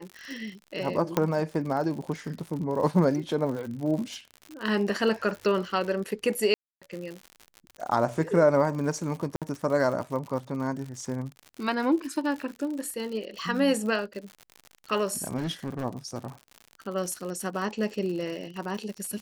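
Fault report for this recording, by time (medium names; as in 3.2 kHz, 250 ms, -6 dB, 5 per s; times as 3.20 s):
crackle 84 per s -34 dBFS
1.17 s: pop -10 dBFS
6.54–6.82 s: dropout 276 ms
9.36–9.42 s: dropout 57 ms
15.36–15.84 s: clipped -26.5 dBFS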